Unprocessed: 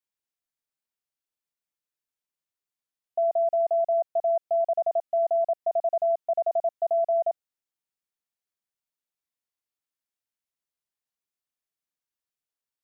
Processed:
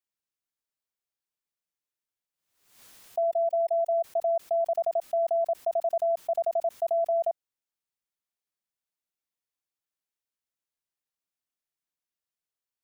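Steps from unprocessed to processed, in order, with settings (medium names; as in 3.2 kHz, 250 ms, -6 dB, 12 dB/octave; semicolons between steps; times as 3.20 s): 3.23–4.04 s: resonances exaggerated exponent 3; swell ahead of each attack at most 79 dB/s; trim -2 dB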